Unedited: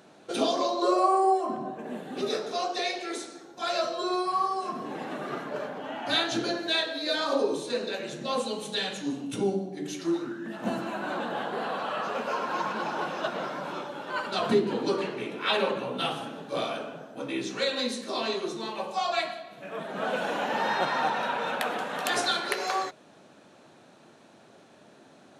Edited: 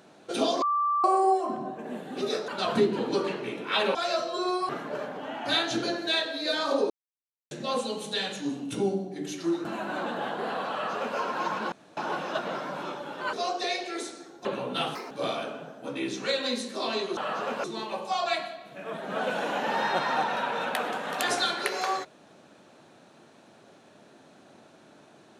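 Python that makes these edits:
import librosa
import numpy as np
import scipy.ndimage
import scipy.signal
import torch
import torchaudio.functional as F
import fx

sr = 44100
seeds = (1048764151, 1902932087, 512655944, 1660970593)

y = fx.edit(x, sr, fx.bleep(start_s=0.62, length_s=0.42, hz=1170.0, db=-22.5),
    fx.swap(start_s=2.48, length_s=1.12, other_s=14.22, other_length_s=1.47),
    fx.cut(start_s=4.34, length_s=0.96),
    fx.silence(start_s=7.51, length_s=0.61),
    fx.cut(start_s=10.26, length_s=0.53),
    fx.duplicate(start_s=11.85, length_s=0.47, to_s=18.5),
    fx.insert_room_tone(at_s=12.86, length_s=0.25),
    fx.speed_span(start_s=16.19, length_s=0.25, speed=1.57), tone=tone)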